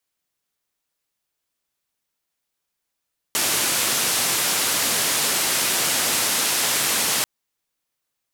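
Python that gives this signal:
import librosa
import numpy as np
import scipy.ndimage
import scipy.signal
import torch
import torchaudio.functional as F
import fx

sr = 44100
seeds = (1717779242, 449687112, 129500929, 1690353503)

y = fx.band_noise(sr, seeds[0], length_s=3.89, low_hz=140.0, high_hz=12000.0, level_db=-21.5)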